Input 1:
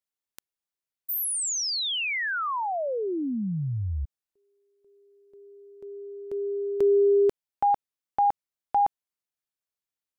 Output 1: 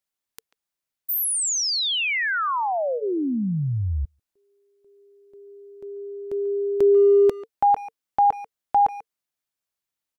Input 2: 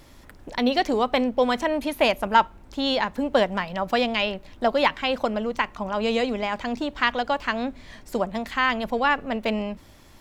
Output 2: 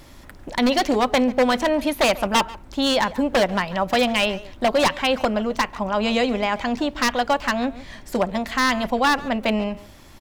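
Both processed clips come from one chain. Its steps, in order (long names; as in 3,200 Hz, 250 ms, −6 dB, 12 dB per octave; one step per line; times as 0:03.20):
wave folding −15.5 dBFS
notch filter 450 Hz, Q 12
far-end echo of a speakerphone 140 ms, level −16 dB
level +4.5 dB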